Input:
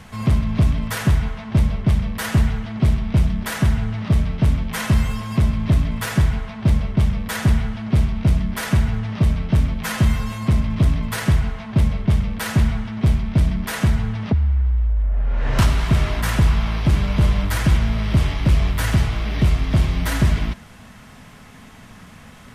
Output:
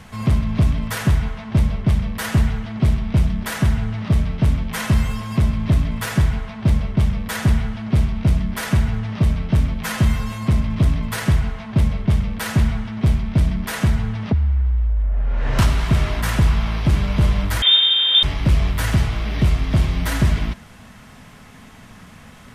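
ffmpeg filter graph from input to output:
-filter_complex "[0:a]asettb=1/sr,asplit=3[a][b][c];[a]atrim=end=17.624[d];[b]atrim=start=17.62:end=18.23,asetpts=PTS-STARTPTS,afade=t=in:d=0.004:c=qsin,afade=t=out:st=0.606:d=0.004:c=qsin,aeval=exprs='val(0)+0.141*sin(2*PI*530*n/s)':c=same,lowpass=f=3.1k:t=q:w=0.5098,lowpass=f=3.1k:t=q:w=0.6013,lowpass=f=3.1k:t=q:w=0.9,lowpass=f=3.1k:t=q:w=2.563,afreqshift=-3700[e];[c]atrim=start=18.226[f];[d][e]acrossfade=d=0.004:c1=hsin:c2=qsin[g];[g][f]acrossfade=d=0.004:c1=qsin:c2=hsin"

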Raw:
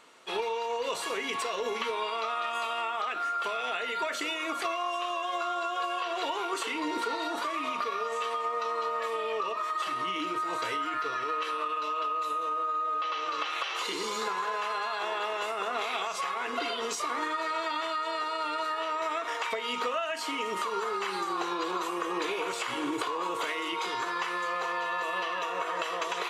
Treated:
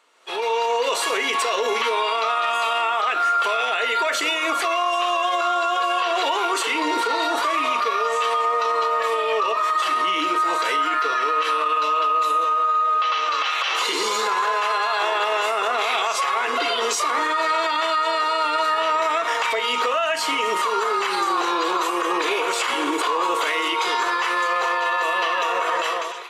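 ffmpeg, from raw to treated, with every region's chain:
-filter_complex "[0:a]asettb=1/sr,asplit=3[a][b][c];[a]atrim=end=12.444[d];[b]atrim=start=12.44:end=13.68,asetpts=PTS-STARTPTS,afade=t=in:d=0.004:c=qsin,afade=t=out:st=1.236:d=0.004:c=qsin,highpass=f=650:p=1,equalizer=f=9.7k:t=o:w=0.27:g=-8[e];[c]atrim=start=13.676[f];[d][e]acrossfade=d=0.004:c1=hsin:c2=qsin[g];[g][f]acrossfade=d=0.004:c1=qsin:c2=hsin,asettb=1/sr,asplit=3[h][i][j];[h]atrim=end=18.624[k];[i]atrim=start=18.62:end=20.5,asetpts=PTS-STARTPTS,afade=t=in:d=0.004:c=qsin,afade=t=out:st=1.876:d=0.004:c=qsin,aeval=exprs='val(0)+0.00282*(sin(2*PI*50*n/s)+sin(2*PI*2*50*n/s)/2+sin(2*PI*3*50*n/s)/3+sin(2*PI*4*50*n/s)/4+sin(2*PI*5*50*n/s)/5)':c=same,asoftclip=type=hard:threshold=-22dB[l];[j]atrim=start=20.496[m];[k][l]acrossfade=d=0.004:c1=hsin:c2=qsin[n];[n][m]acrossfade=d=0.004:c1=qsin:c2=hsin,highpass=380,alimiter=level_in=1dB:limit=-24dB:level=0:latency=1:release=26,volume=-1dB,dynaudnorm=f=100:g=7:m=16dB,volume=-4dB"

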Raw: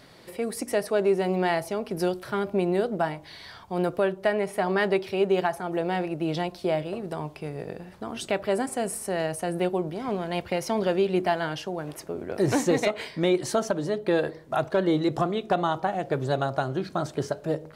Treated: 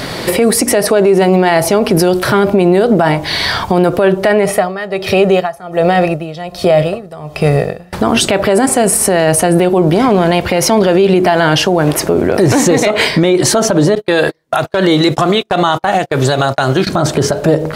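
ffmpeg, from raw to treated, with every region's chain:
-filter_complex "[0:a]asettb=1/sr,asplit=3[a][b][c];[a]atrim=end=4.454[d];[b]atrim=start=4.45:end=7.93,asetpts=PTS-STARTPTS,afade=t=in:d=0.004:c=qsin,afade=t=out:st=3.476:d=0.004:c=qsin,aecho=1:1:1.6:0.51,atrim=end_sample=153468,aeval=exprs='val(0)*pow(10,-28*(0.5-0.5*cos(2*PI*1.3*n/s))/20)':c=same[e];[c]atrim=start=7.926[f];[d][e]acrossfade=d=0.004:c1=hsin:c2=qsin[g];[g][f]acrossfade=d=0.004:c1=qsin:c2=hsin,asettb=1/sr,asplit=3[h][i][j];[h]atrim=end=13.954[k];[i]atrim=start=13.95:end=16.87,asetpts=PTS-STARTPTS,afade=t=in:d=0.004:c=qsin,afade=t=out:st=2.916:d=0.004:c=qsin,agate=range=-40dB:threshold=-33dB:ratio=16:release=100:detection=peak,tiltshelf=f=1.2k:g=-5.5[l];[j]atrim=start=16.866[m];[k][l]acrossfade=d=0.004:c1=hsin:c2=qsin[n];[n][m]acrossfade=d=0.004:c1=qsin:c2=hsin,acompressor=threshold=-42dB:ratio=1.5,alimiter=level_in=31dB:limit=-1dB:release=50:level=0:latency=1,volume=-1dB"

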